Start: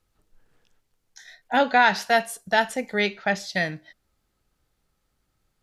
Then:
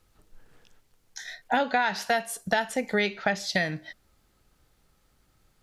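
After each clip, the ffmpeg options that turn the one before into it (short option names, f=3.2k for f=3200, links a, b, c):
-af "acompressor=threshold=-30dB:ratio=5,volume=7dB"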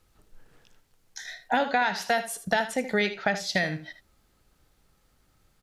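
-af "aecho=1:1:77:0.251"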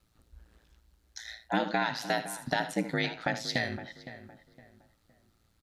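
-filter_complex "[0:a]equalizer=f=250:t=o:w=0.33:g=8,equalizer=f=400:t=o:w=0.33:g=-4,equalizer=f=4k:t=o:w=0.33:g=5,aeval=exprs='val(0)*sin(2*PI*56*n/s)':c=same,asplit=2[a][b];[b]adelay=513,lowpass=f=1.8k:p=1,volume=-13dB,asplit=2[c][d];[d]adelay=513,lowpass=f=1.8k:p=1,volume=0.33,asplit=2[e][f];[f]adelay=513,lowpass=f=1.8k:p=1,volume=0.33[g];[a][c][e][g]amix=inputs=4:normalize=0,volume=-2.5dB"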